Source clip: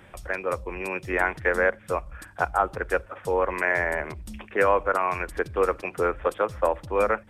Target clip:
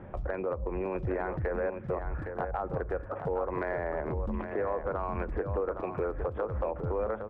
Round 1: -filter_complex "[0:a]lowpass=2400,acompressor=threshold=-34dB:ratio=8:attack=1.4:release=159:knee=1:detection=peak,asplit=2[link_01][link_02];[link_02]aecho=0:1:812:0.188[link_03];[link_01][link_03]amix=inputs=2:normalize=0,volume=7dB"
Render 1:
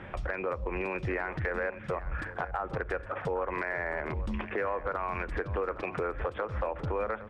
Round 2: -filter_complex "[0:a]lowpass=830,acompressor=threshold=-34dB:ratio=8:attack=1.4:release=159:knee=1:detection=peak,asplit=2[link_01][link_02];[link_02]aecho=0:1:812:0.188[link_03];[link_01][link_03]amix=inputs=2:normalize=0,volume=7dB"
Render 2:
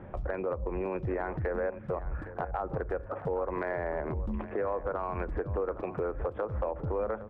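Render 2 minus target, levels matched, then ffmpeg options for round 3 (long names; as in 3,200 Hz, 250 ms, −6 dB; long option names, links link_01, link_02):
echo-to-direct −7 dB
-filter_complex "[0:a]lowpass=830,acompressor=threshold=-34dB:ratio=8:attack=1.4:release=159:knee=1:detection=peak,asplit=2[link_01][link_02];[link_02]aecho=0:1:812:0.422[link_03];[link_01][link_03]amix=inputs=2:normalize=0,volume=7dB"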